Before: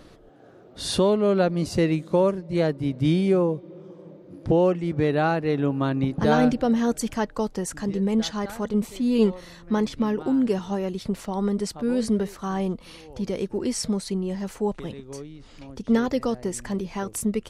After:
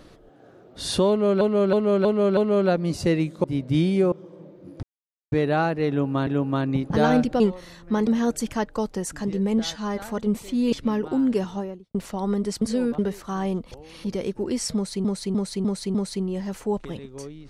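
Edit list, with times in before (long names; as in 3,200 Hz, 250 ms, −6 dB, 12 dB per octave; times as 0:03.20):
0:01.09–0:01.41: repeat, 5 plays
0:02.16–0:02.75: remove
0:03.43–0:03.78: remove
0:04.49–0:04.98: silence
0:05.55–0:05.93: repeat, 2 plays
0:08.20–0:08.47: time-stretch 1.5×
0:09.20–0:09.87: move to 0:06.68
0:10.58–0:11.09: fade out and dull
0:11.76–0:12.13: reverse
0:12.86–0:13.19: reverse
0:13.89–0:14.19: repeat, 5 plays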